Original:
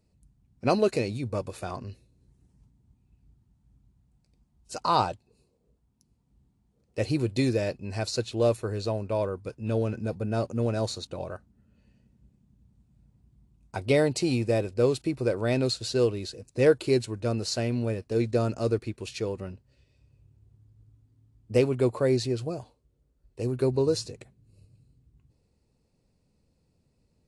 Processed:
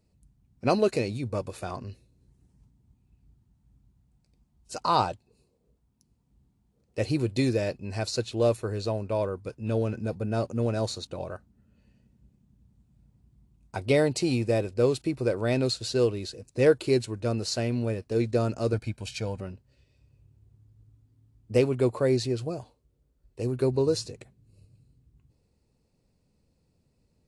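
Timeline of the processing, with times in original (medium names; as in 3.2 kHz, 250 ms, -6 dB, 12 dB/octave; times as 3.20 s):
18.73–19.41 s: comb 1.3 ms, depth 71%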